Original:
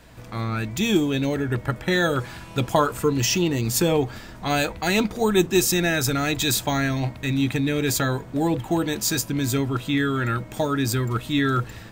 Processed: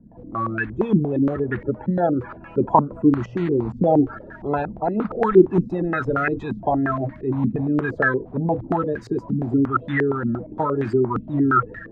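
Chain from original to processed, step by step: bin magnitudes rounded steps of 30 dB; stepped low-pass 8.6 Hz 220–1700 Hz; gain -1.5 dB

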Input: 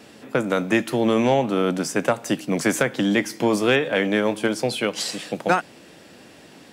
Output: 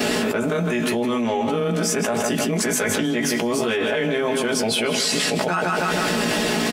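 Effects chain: short-time reversal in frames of 34 ms; notches 50/100/150/200/250 Hz; comb 4.7 ms, depth 54%; on a send: feedback echo 0.158 s, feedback 37%, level -12 dB; on the sum: fast leveller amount 100%; gain -4.5 dB

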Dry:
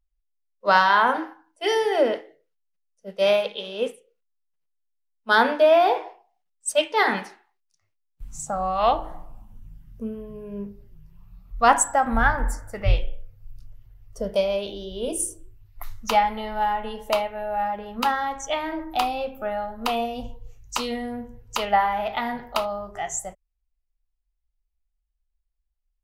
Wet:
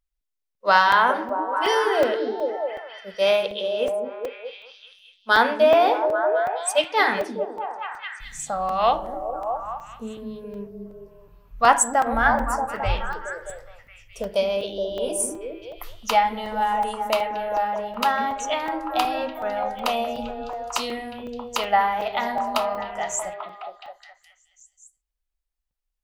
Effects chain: low shelf 290 Hz -8 dB; delay with a stepping band-pass 0.21 s, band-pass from 260 Hz, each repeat 0.7 oct, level -0.5 dB; crackling interface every 0.37 s, samples 128, zero, from 0.55; gain +1.5 dB

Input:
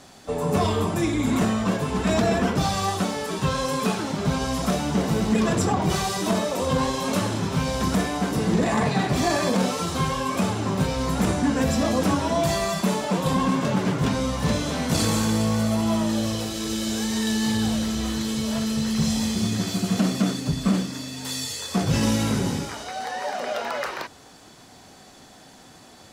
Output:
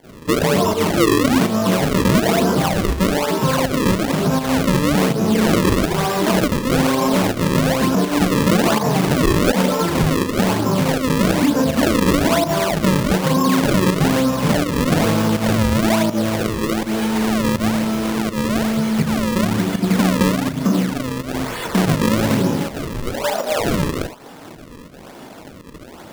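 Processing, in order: bell 2100 Hz -9.5 dB 0.91 oct; in parallel at +1 dB: compressor, threshold -31 dBFS, peak gain reduction 13.5 dB; on the sum: Bessel high-pass 180 Hz, order 2; high shelf 4100 Hz -10.5 dB; on a send at -16 dB: reverb, pre-delay 3 ms; on the sum: pump 82 bpm, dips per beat 1, -20 dB, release 0.123 s; notch 740 Hz, Q 12; flutter echo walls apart 6.5 m, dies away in 0.27 s; decimation with a swept rate 34×, swing 160% 1.1 Hz; maximiser +14 dB; gain -7 dB

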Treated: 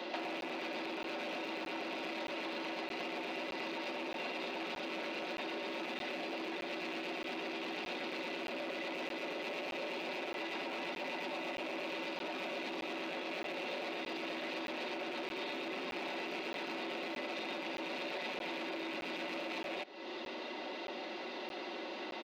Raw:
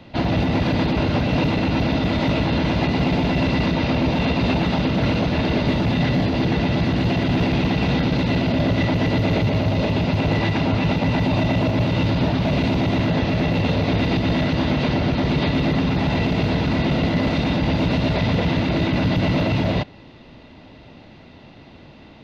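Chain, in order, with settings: rattling part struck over -32 dBFS, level -18 dBFS; steep high-pass 290 Hz 36 dB/oct; comb 5.4 ms, depth 56%; limiter -19 dBFS, peak gain reduction 10 dB; compressor 10:1, threshold -42 dBFS, peak gain reduction 17.5 dB; crackling interface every 0.62 s, samples 512, zero, from 0.41; core saturation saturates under 1200 Hz; gain +5.5 dB

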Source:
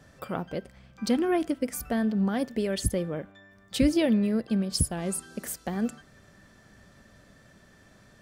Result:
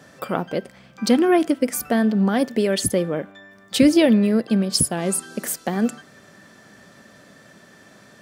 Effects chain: HPF 180 Hz 12 dB/oct; gain +9 dB

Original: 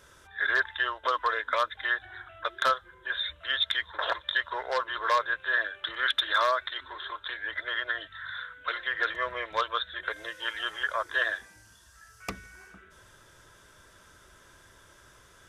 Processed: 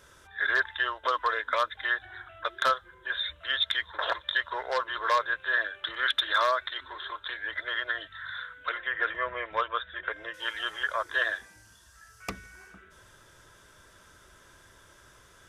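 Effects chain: 8.69–10.34 polynomial smoothing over 25 samples

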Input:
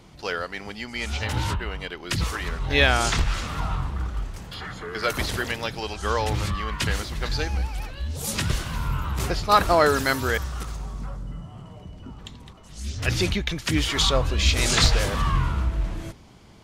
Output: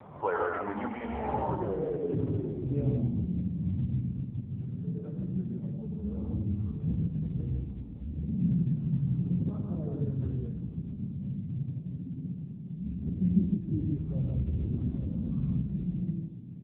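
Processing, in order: 2.27–3.92 minimum comb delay 0.33 ms; 8.45–9.21 high shelf 2100 Hz +8.5 dB; de-hum 114.6 Hz, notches 4; compressor 1.5:1, threshold -40 dBFS, peak gain reduction 10 dB; loudspeakers at several distances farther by 35 m -6 dB, 54 m -3 dB; flange 0.14 Hz, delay 1.4 ms, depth 9.3 ms, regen -21%; soft clip -19.5 dBFS, distortion -24 dB; on a send at -12 dB: reverb RT60 1.7 s, pre-delay 39 ms; on the sum: low-pass sweep 1000 Hz -> 180 Hz, 0.92–3.43; gain +7 dB; AMR-NB 6.7 kbps 8000 Hz

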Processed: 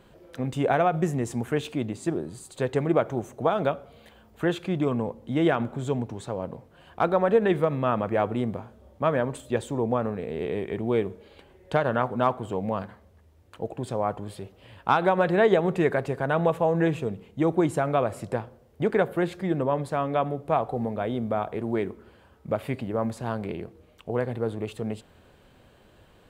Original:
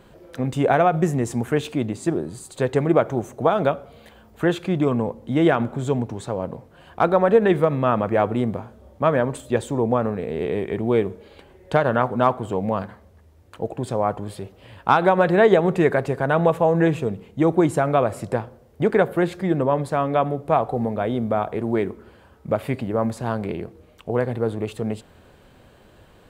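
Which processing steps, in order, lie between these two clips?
bell 3000 Hz +2 dB; gain -5 dB

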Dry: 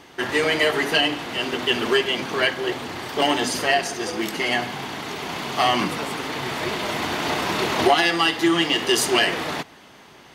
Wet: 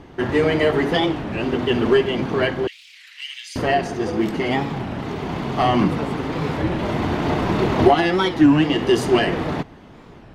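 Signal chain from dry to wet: 2.67–3.56 elliptic high-pass 2200 Hz, stop band 80 dB; tilt -4 dB/oct; record warp 33 1/3 rpm, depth 250 cents

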